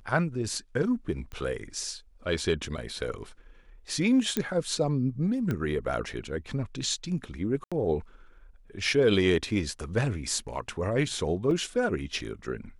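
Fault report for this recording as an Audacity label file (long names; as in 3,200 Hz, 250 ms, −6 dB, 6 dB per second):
1.320000	1.320000	click −27 dBFS
4.370000	4.370000	click −12 dBFS
5.510000	5.510000	click −18 dBFS
7.640000	7.720000	drop-out 76 ms
11.510000	11.510000	drop-out 2.5 ms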